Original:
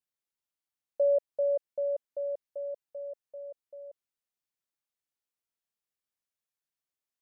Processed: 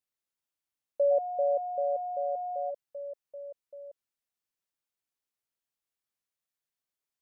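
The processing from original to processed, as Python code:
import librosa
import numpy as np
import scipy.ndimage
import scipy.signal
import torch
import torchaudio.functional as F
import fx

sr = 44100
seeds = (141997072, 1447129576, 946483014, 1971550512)

y = fx.dmg_tone(x, sr, hz=720.0, level_db=-32.0, at=(1.1, 2.69), fade=0.02)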